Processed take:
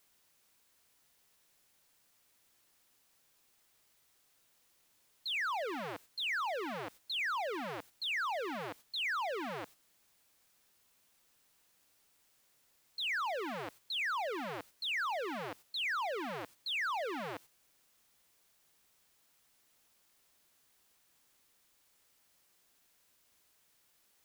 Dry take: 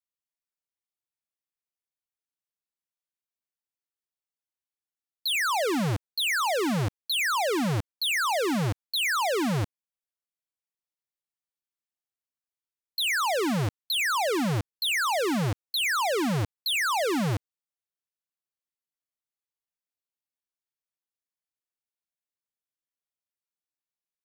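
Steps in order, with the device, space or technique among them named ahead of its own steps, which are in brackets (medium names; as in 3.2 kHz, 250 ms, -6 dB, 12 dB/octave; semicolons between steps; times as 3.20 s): baby monitor (band-pass 440–3000 Hz; compression, threshold -29 dBFS, peak gain reduction 5.5 dB; white noise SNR 21 dB; gate -47 dBFS, range -8 dB); trim -4.5 dB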